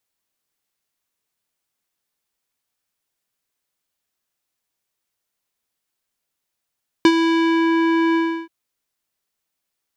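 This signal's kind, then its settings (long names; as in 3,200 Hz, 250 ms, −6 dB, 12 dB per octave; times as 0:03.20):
subtractive voice square E4 12 dB per octave, low-pass 2,200 Hz, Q 1.1, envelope 1 octave, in 0.65 s, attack 1.8 ms, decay 0.06 s, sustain −8.5 dB, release 0.33 s, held 1.10 s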